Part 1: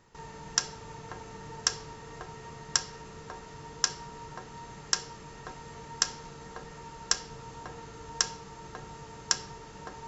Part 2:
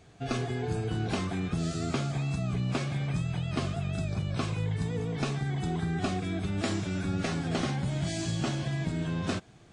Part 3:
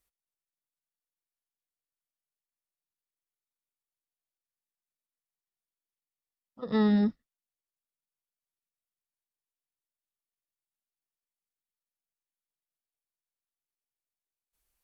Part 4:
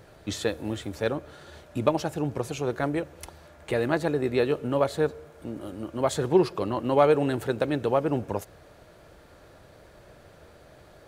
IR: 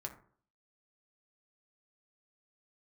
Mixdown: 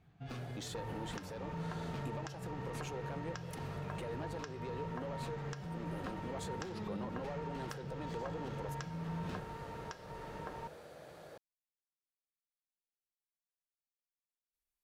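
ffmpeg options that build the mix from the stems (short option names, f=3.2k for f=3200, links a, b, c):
-filter_complex "[0:a]lowpass=2.7k,adelay=600,volume=1dB[a];[1:a]adynamicsmooth=sensitivity=7.5:basefreq=3k,equalizer=f=500:w=1.4:g=-12.5,asoftclip=type=tanh:threshold=-29.5dB,volume=-9.5dB[b];[2:a]volume=-14.5dB[c];[3:a]highpass=f=230:p=1,acompressor=threshold=-32dB:ratio=6,asoftclip=type=tanh:threshold=-30dB,adelay=300,volume=-2dB[d];[a][c]amix=inputs=2:normalize=0,acompressor=threshold=-41dB:ratio=6,volume=0dB[e];[b][d]amix=inputs=2:normalize=0,equalizer=f=160:t=o:w=0.33:g=8,equalizer=f=500:t=o:w=0.33:g=6,equalizer=f=800:t=o:w=0.33:g=4,alimiter=level_in=11.5dB:limit=-24dB:level=0:latency=1:release=91,volume=-11.5dB,volume=0dB[f];[e][f]amix=inputs=2:normalize=0,alimiter=level_in=2.5dB:limit=-24dB:level=0:latency=1:release=283,volume=-2.5dB"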